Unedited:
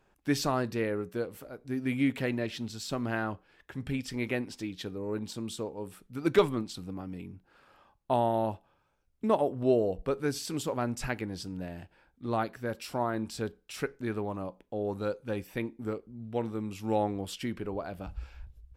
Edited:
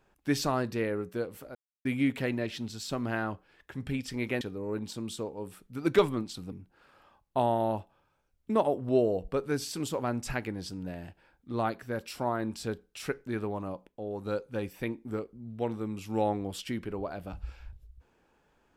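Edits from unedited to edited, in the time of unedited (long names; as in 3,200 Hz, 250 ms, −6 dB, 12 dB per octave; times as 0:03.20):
0:01.55–0:01.85: silence
0:04.41–0:04.81: remove
0:06.92–0:07.26: remove
0:14.61–0:14.99: clip gain −4 dB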